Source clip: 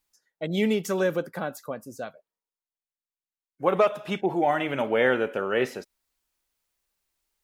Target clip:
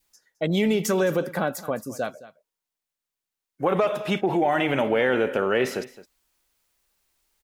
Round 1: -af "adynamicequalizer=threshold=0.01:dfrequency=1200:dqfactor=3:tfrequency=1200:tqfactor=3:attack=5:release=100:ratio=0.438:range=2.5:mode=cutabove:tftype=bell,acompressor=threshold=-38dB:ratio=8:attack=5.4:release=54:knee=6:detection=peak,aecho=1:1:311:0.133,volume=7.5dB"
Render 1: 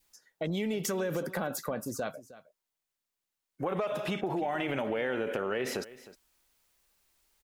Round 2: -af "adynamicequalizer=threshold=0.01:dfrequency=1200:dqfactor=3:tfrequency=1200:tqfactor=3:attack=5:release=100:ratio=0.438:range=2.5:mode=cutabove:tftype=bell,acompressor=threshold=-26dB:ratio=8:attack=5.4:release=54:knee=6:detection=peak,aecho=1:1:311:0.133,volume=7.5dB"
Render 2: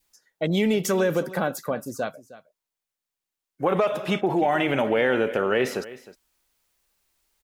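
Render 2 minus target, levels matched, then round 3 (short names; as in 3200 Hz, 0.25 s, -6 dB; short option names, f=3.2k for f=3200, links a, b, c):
echo 96 ms late
-af "adynamicequalizer=threshold=0.01:dfrequency=1200:dqfactor=3:tfrequency=1200:tqfactor=3:attack=5:release=100:ratio=0.438:range=2.5:mode=cutabove:tftype=bell,acompressor=threshold=-26dB:ratio=8:attack=5.4:release=54:knee=6:detection=peak,aecho=1:1:215:0.133,volume=7.5dB"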